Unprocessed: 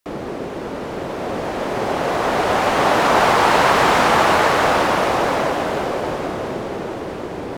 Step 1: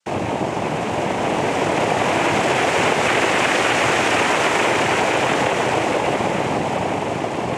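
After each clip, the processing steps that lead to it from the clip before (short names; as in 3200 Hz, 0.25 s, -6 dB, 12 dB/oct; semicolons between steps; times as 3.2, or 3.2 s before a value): noise vocoder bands 4; compressor, threshold -20 dBFS, peak gain reduction 9.5 dB; gain +5.5 dB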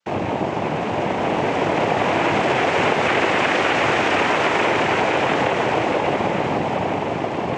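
air absorption 120 m; notches 60/120 Hz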